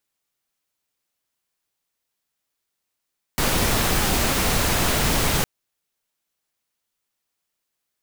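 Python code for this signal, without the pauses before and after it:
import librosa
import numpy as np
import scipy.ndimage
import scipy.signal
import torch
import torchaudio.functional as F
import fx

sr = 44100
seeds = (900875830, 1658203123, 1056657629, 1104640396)

y = fx.noise_colour(sr, seeds[0], length_s=2.06, colour='pink', level_db=-20.5)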